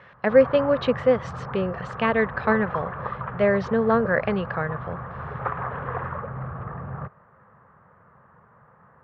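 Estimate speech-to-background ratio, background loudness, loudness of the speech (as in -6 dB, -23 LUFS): 10.5 dB, -33.5 LUFS, -23.0 LUFS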